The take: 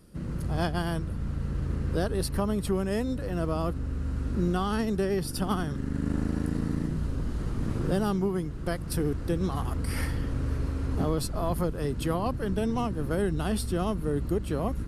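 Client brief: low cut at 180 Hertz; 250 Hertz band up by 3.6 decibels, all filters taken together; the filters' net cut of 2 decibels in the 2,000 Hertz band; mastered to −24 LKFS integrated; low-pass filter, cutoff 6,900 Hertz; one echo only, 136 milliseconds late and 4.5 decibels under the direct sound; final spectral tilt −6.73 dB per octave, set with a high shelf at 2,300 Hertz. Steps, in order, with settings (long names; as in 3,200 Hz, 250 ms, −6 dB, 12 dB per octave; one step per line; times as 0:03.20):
high-pass filter 180 Hz
low-pass filter 6,900 Hz
parametric band 250 Hz +7 dB
parametric band 2,000 Hz −4.5 dB
high-shelf EQ 2,300 Hz +3.5 dB
single-tap delay 136 ms −4.5 dB
level +3.5 dB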